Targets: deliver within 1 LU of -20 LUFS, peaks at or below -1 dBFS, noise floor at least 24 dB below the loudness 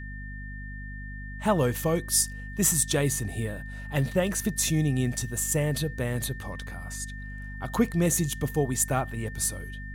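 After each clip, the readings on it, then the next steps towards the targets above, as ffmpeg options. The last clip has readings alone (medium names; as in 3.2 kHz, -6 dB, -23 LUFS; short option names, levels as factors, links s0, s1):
hum 50 Hz; highest harmonic 250 Hz; hum level -36 dBFS; steady tone 1.8 kHz; tone level -42 dBFS; loudness -27.0 LUFS; peak level -9.0 dBFS; loudness target -20.0 LUFS
-> -af "bandreject=f=50:t=h:w=6,bandreject=f=100:t=h:w=6,bandreject=f=150:t=h:w=6,bandreject=f=200:t=h:w=6,bandreject=f=250:t=h:w=6"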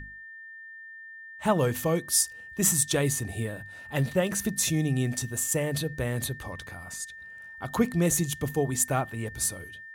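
hum not found; steady tone 1.8 kHz; tone level -42 dBFS
-> -af "bandreject=f=1800:w=30"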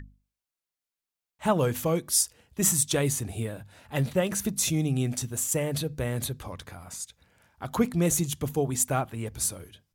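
steady tone not found; loudness -27.0 LUFS; peak level -9.0 dBFS; loudness target -20.0 LUFS
-> -af "volume=2.24"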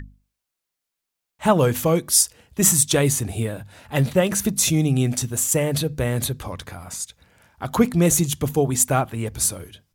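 loudness -20.0 LUFS; peak level -2.0 dBFS; noise floor -83 dBFS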